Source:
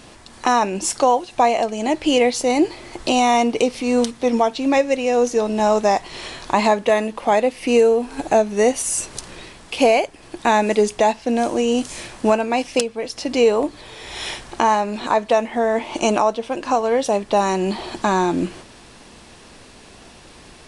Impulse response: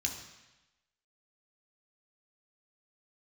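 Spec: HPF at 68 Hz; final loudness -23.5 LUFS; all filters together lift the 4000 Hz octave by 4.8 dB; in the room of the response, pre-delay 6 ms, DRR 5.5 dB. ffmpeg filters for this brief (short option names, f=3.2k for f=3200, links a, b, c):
-filter_complex "[0:a]highpass=68,equalizer=f=4k:t=o:g=6.5,asplit=2[a][b];[1:a]atrim=start_sample=2205,adelay=6[c];[b][c]afir=irnorm=-1:irlink=0,volume=-8dB[d];[a][d]amix=inputs=2:normalize=0,volume=-5.5dB"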